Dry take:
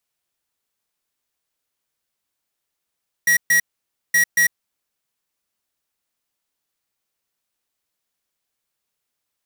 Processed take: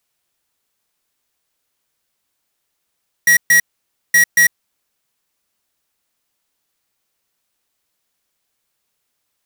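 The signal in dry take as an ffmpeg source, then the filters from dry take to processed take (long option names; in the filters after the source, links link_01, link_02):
-f lavfi -i "aevalsrc='0.178*(2*lt(mod(1910*t,1),0.5)-1)*clip(min(mod(mod(t,0.87),0.23),0.1-mod(mod(t,0.87),0.23))/0.005,0,1)*lt(mod(t,0.87),0.46)':duration=1.74:sample_rate=44100"
-af "acontrast=81,asoftclip=type=hard:threshold=-10dB"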